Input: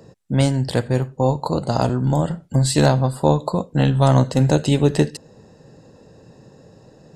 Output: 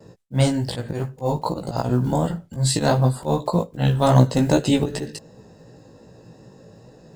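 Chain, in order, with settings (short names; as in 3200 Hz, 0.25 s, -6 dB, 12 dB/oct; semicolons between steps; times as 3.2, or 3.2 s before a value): block floating point 7-bit; gate with hold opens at -41 dBFS; auto swell 0.118 s; chorus 2.6 Hz, delay 16 ms, depth 2.5 ms; gain +3 dB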